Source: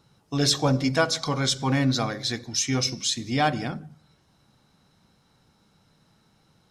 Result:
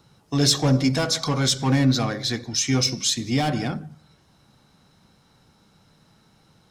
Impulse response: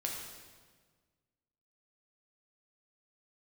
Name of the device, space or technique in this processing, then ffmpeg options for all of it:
one-band saturation: -filter_complex "[0:a]asettb=1/sr,asplit=3[s0][s1][s2];[s0]atrim=end=1.854[s3];[s1]atrim=start=1.85:end=2.66,asetpts=PTS-STARTPTS,afade=t=in:d=0.004:c=qsin,afade=t=out:st=0.806:d=0.004:c=qsin,highshelf=f=6700:g=-5.5[s4];[s2]atrim=start=2.656[s5];[s3][s4]acrossfade=d=0.004:c1=hsin:c2=qsin[s6];[s6][s5]acrossfade=d=0.004:c1=qsin:c2=hsin,acrossover=split=350|4500[s7][s8][s9];[s8]asoftclip=type=tanh:threshold=0.0398[s10];[s7][s10][s9]amix=inputs=3:normalize=0,volume=1.68"

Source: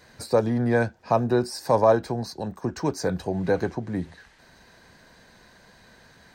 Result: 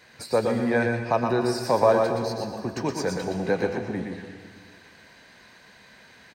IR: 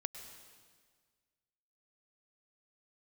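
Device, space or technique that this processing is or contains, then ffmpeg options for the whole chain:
PA in a hall: -filter_complex "[0:a]highpass=f=120:p=1,equalizer=f=2500:t=o:w=1.1:g=7.5,aecho=1:1:120:0.562[s0];[1:a]atrim=start_sample=2205[s1];[s0][s1]afir=irnorm=-1:irlink=0"

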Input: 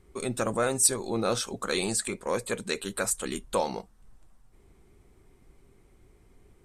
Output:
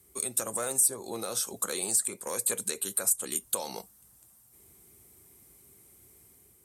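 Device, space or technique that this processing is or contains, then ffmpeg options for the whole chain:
FM broadcast chain: -filter_complex "[0:a]highpass=f=66:w=0.5412,highpass=f=66:w=1.3066,dynaudnorm=f=120:g=7:m=1.5,acrossover=split=400|1200[s0][s1][s2];[s0]acompressor=threshold=0.0141:ratio=4[s3];[s1]acompressor=threshold=0.0562:ratio=4[s4];[s2]acompressor=threshold=0.0158:ratio=4[s5];[s3][s4][s5]amix=inputs=3:normalize=0,aemphasis=mode=production:type=50fm,alimiter=limit=0.15:level=0:latency=1:release=231,asoftclip=type=hard:threshold=0.112,lowpass=f=15000:w=0.5412,lowpass=f=15000:w=1.3066,aemphasis=mode=production:type=50fm,volume=0.501"

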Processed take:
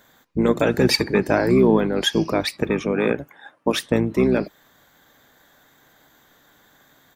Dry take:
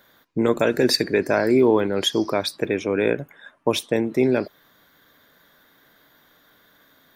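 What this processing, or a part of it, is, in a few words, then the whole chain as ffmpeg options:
octave pedal: -filter_complex "[0:a]asplit=2[s0][s1];[s1]asetrate=22050,aresample=44100,atempo=2,volume=0.562[s2];[s0][s2]amix=inputs=2:normalize=0,asettb=1/sr,asplit=3[s3][s4][s5];[s3]atrim=end=2.924[s6];[s4]atrim=start=2.92:end=3.8,asetpts=PTS-STARTPTS,afade=t=in:d=0.004:c=qsin,afade=t=out:st=0.876:d=0.004:c=qsin,highpass=f=170:p=1[s7];[s5]atrim=start=3.796[s8];[s6][s7]acrossfade=d=0.004:c1=hsin:c2=qsin[s9];[s9][s8]acrossfade=d=0.004:c1=qsin:c2=hsin"

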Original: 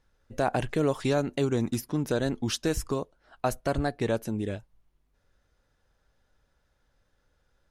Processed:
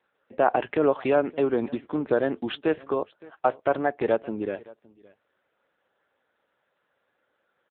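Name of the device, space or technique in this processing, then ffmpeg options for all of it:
satellite phone: -filter_complex "[0:a]asplit=3[s0][s1][s2];[s0]afade=t=out:st=2.74:d=0.02[s3];[s1]equalizer=f=230:w=4:g=-4,afade=t=in:st=2.74:d=0.02,afade=t=out:st=3.91:d=0.02[s4];[s2]afade=t=in:st=3.91:d=0.02[s5];[s3][s4][s5]amix=inputs=3:normalize=0,highpass=350,lowpass=3000,aecho=1:1:567:0.0708,volume=2.24" -ar 8000 -c:a libopencore_amrnb -b:a 6700

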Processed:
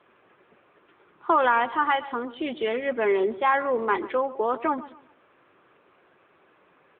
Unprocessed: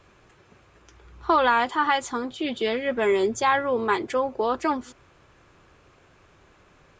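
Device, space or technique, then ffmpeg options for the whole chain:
telephone: -filter_complex "[0:a]asplit=3[s0][s1][s2];[s0]afade=t=out:st=1.34:d=0.02[s3];[s1]bandreject=f=429.4:t=h:w=4,bandreject=f=858.8:t=h:w=4,bandreject=f=1288.2:t=h:w=4,bandreject=f=1717.6:t=h:w=4,bandreject=f=2147:t=h:w=4,bandreject=f=2576.4:t=h:w=4,bandreject=f=3005.8:t=h:w=4,bandreject=f=3435.2:t=h:w=4,bandreject=f=3864.6:t=h:w=4,bandreject=f=4294:t=h:w=4,bandreject=f=4723.4:t=h:w=4,bandreject=f=5152.8:t=h:w=4,bandreject=f=5582.2:t=h:w=4,bandreject=f=6011.6:t=h:w=4,bandreject=f=6441:t=h:w=4,bandreject=f=6870.4:t=h:w=4,bandreject=f=7299.8:t=h:w=4,bandreject=f=7729.2:t=h:w=4,bandreject=f=8158.6:t=h:w=4,bandreject=f=8588:t=h:w=4,bandreject=f=9017.4:t=h:w=4,bandreject=f=9446.8:t=h:w=4,bandreject=f=9876.2:t=h:w=4,bandreject=f=10305.6:t=h:w=4,bandreject=f=10735:t=h:w=4,bandreject=f=11164.4:t=h:w=4,bandreject=f=11593.8:t=h:w=4,bandreject=f=12023.2:t=h:w=4,bandreject=f=12452.6:t=h:w=4,bandreject=f=12882:t=h:w=4,bandreject=f=13311.4:t=h:w=4,afade=t=in:st=1.34:d=0.02,afade=t=out:st=2.19:d=0.02[s4];[s2]afade=t=in:st=2.19:d=0.02[s5];[s3][s4][s5]amix=inputs=3:normalize=0,highpass=260,lowpass=3200,asplit=2[s6][s7];[s7]adelay=133,lowpass=f=3500:p=1,volume=0.15,asplit=2[s8][s9];[s9]adelay=133,lowpass=f=3500:p=1,volume=0.33,asplit=2[s10][s11];[s11]adelay=133,lowpass=f=3500:p=1,volume=0.33[s12];[s6][s8][s10][s12]amix=inputs=4:normalize=0" -ar 8000 -c:a libopencore_amrnb -b:a 10200

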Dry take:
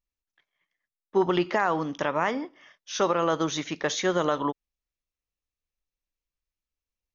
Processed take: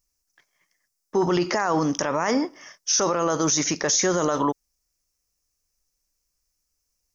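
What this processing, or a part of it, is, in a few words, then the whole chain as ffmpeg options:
over-bright horn tweeter: -af "highshelf=f=4400:t=q:w=3:g=7.5,alimiter=limit=0.0841:level=0:latency=1:release=21,volume=2.82"

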